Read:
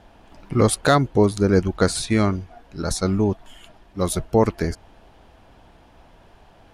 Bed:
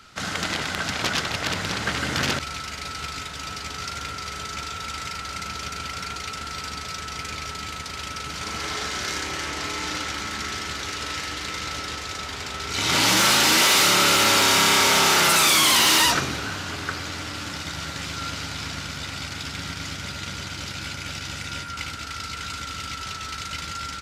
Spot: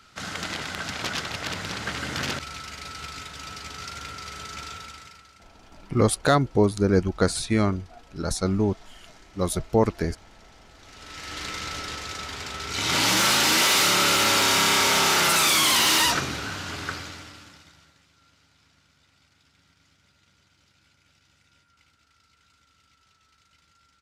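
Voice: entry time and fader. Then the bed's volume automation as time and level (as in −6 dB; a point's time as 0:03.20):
5.40 s, −3.0 dB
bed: 0:04.73 −5 dB
0:05.48 −25.5 dB
0:10.69 −25.5 dB
0:11.39 −2.5 dB
0:16.92 −2.5 dB
0:18.06 −30.5 dB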